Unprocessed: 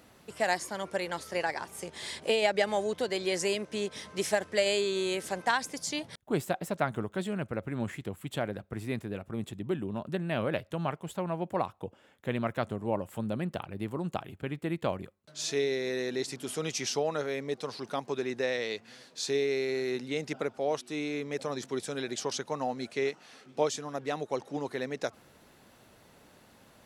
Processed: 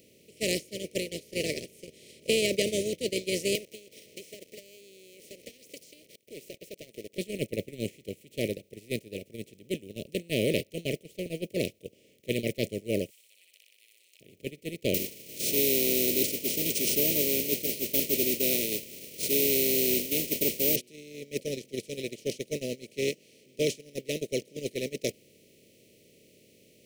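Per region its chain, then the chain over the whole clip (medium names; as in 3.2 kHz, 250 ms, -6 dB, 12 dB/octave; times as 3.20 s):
3.55–7.18 s: high-pass 500 Hz + waveshaping leveller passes 3 + compression 12:1, threshold -35 dBFS
13.10–14.21 s: Bessel high-pass 3 kHz, order 6 + flutter echo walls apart 10.5 m, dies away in 0.72 s
14.94–20.76 s: static phaser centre 480 Hz, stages 6 + word length cut 8-bit, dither triangular + careless resampling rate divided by 3×, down none, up zero stuff
whole clip: spectral levelling over time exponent 0.4; gate -23 dBFS, range -24 dB; inverse Chebyshev band-stop 760–1600 Hz, stop band 40 dB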